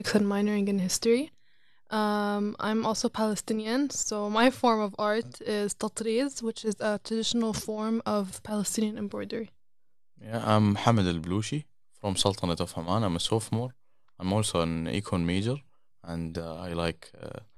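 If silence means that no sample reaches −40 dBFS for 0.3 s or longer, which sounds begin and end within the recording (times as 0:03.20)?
0:01.91–0:09.46
0:10.24–0:11.61
0:12.03–0:13.70
0:14.20–0:15.59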